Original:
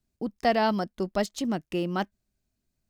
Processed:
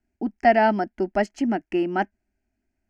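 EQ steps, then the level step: LPF 3800 Hz 12 dB/oct; low shelf 63 Hz -7 dB; fixed phaser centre 750 Hz, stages 8; +8.0 dB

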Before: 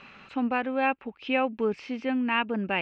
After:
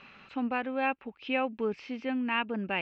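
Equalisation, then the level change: air absorption 130 m; high shelf 4300 Hz +10.5 dB; -4.0 dB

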